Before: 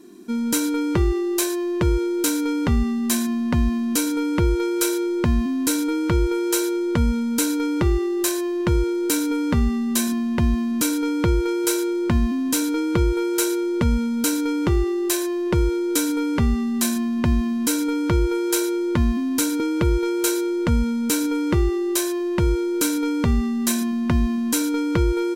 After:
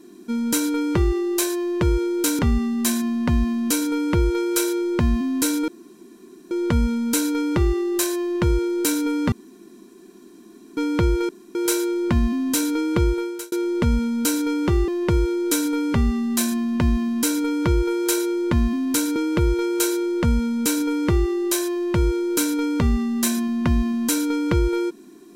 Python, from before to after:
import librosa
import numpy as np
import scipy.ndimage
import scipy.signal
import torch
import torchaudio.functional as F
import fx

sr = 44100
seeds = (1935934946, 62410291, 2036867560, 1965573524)

y = fx.edit(x, sr, fx.cut(start_s=2.39, length_s=0.25),
    fx.room_tone_fill(start_s=5.93, length_s=0.83),
    fx.room_tone_fill(start_s=9.57, length_s=1.45),
    fx.insert_room_tone(at_s=11.54, length_s=0.26),
    fx.fade_out_span(start_s=13.08, length_s=0.43),
    fx.cut(start_s=14.87, length_s=0.45), tone=tone)